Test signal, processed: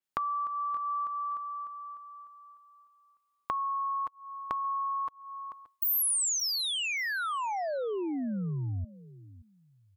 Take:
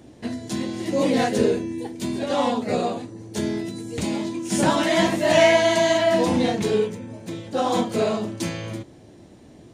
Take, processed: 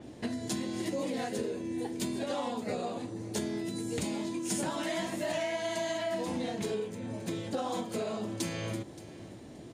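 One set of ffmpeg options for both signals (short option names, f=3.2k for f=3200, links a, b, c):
-af "lowshelf=f=83:g=-5,bandreject=f=5.8k:w=26,acompressor=threshold=-31dB:ratio=10,aecho=1:1:575|1150:0.126|0.0302,adynamicequalizer=threshold=0.00355:dfrequency=6300:dqfactor=0.7:tfrequency=6300:tqfactor=0.7:attack=5:release=100:ratio=0.375:range=2.5:mode=boostabove:tftype=highshelf"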